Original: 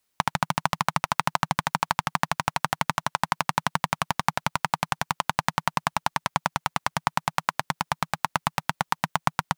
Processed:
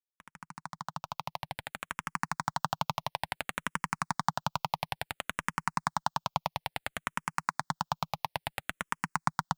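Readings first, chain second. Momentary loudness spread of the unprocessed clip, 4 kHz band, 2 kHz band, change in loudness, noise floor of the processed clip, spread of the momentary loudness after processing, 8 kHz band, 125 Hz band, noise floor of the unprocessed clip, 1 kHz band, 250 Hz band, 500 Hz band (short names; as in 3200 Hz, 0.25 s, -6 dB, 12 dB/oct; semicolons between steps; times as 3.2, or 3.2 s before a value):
3 LU, -8.0 dB, -8.0 dB, -8.0 dB, under -85 dBFS, 8 LU, -8.5 dB, -8.0 dB, -76 dBFS, -8.0 dB, -8.0 dB, -8.0 dB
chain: opening faded in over 2.72 s; notch 6100 Hz, Q 24; endless phaser -0.58 Hz; gain -4 dB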